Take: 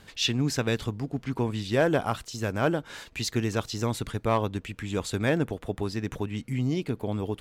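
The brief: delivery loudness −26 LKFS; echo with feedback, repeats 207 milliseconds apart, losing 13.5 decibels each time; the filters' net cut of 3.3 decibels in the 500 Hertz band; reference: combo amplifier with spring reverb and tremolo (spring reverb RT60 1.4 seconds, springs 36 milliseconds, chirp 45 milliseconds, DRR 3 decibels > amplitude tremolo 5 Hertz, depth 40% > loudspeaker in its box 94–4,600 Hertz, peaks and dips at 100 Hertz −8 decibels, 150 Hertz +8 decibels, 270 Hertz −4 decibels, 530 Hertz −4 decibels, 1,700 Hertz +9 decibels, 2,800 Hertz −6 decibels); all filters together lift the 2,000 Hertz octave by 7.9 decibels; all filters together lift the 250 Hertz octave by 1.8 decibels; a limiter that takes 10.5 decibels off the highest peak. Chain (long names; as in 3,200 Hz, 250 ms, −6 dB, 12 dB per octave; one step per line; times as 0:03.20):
parametric band 250 Hz +4.5 dB
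parametric band 500 Hz −3.5 dB
parametric band 2,000 Hz +3.5 dB
brickwall limiter −23 dBFS
repeating echo 207 ms, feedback 21%, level −13.5 dB
spring reverb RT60 1.4 s, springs 36 ms, chirp 45 ms, DRR 3 dB
amplitude tremolo 5 Hz, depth 40%
loudspeaker in its box 94–4,600 Hz, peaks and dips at 100 Hz −8 dB, 150 Hz +8 dB, 270 Hz −4 dB, 530 Hz −4 dB, 1,700 Hz +9 dB, 2,800 Hz −6 dB
level +7.5 dB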